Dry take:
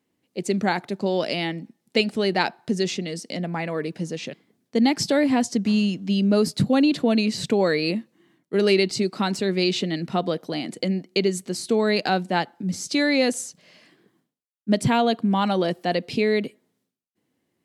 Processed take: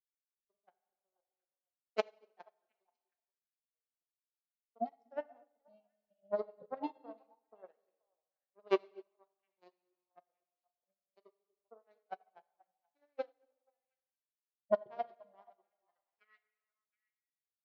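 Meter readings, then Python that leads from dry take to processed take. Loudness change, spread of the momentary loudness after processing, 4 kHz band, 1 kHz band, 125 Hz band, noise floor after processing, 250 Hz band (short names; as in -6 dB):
-17.0 dB, 21 LU, -32.0 dB, -19.5 dB, under -35 dB, under -85 dBFS, -30.5 dB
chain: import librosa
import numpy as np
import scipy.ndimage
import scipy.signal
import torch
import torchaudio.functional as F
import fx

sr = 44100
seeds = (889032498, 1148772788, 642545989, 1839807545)

p1 = fx.bin_expand(x, sr, power=2.0)
p2 = fx.power_curve(p1, sr, exponent=3.0)
p3 = scipy.signal.sosfilt(scipy.signal.butter(6, 6500.0, 'lowpass', fs=sr, output='sos'), p2)
p4 = fx.filter_sweep_bandpass(p3, sr, from_hz=640.0, to_hz=4000.0, start_s=15.55, end_s=16.95, q=2.5)
p5 = fx.level_steps(p4, sr, step_db=15)
p6 = p4 + (p5 * 10.0 ** (-1.0 / 20.0))
p7 = scipy.signal.sosfilt(scipy.signal.butter(2, 180.0, 'highpass', fs=sr, output='sos'), p6)
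p8 = fx.echo_stepped(p7, sr, ms=240, hz=320.0, octaves=1.4, feedback_pct=70, wet_db=-6.5)
p9 = fx.rev_gated(p8, sr, seeds[0], gate_ms=440, shape='falling', drr_db=5.0)
p10 = fx.upward_expand(p9, sr, threshold_db=-57.0, expansion=2.5)
y = p10 * 10.0 ** (10.5 / 20.0)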